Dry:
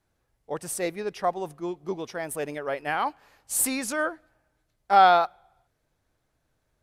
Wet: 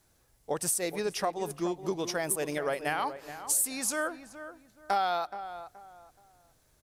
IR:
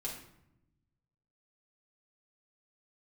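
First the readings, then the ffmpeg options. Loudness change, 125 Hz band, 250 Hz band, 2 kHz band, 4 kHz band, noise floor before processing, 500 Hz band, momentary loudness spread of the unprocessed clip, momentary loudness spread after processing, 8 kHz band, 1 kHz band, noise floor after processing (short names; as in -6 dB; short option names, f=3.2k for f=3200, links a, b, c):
-5.0 dB, 0.0 dB, -2.5 dB, -5.0 dB, -2.5 dB, -76 dBFS, -3.5 dB, 15 LU, 16 LU, +0.5 dB, -9.5 dB, -68 dBFS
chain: -filter_complex "[0:a]bass=f=250:g=0,treble=f=4k:g=10,acompressor=threshold=-33dB:ratio=5,asplit=2[a][b];[b]adelay=424,lowpass=f=1.8k:p=1,volume=-11dB,asplit=2[c][d];[d]adelay=424,lowpass=f=1.8k:p=1,volume=0.29,asplit=2[e][f];[f]adelay=424,lowpass=f=1.8k:p=1,volume=0.29[g];[a][c][e][g]amix=inputs=4:normalize=0,volume=5dB"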